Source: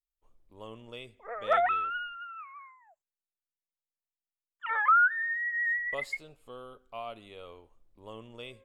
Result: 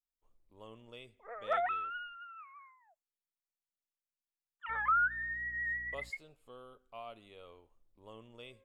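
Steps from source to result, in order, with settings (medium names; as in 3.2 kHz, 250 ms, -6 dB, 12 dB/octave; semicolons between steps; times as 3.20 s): 4.68–6.09 s: mains buzz 60 Hz, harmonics 5, -48 dBFS -8 dB/octave; trim -7 dB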